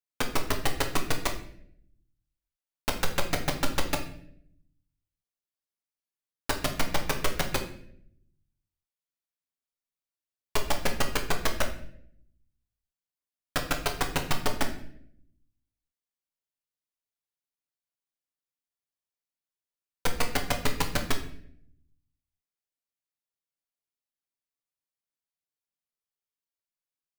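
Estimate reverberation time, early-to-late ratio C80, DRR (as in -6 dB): 0.65 s, 12.5 dB, 3.0 dB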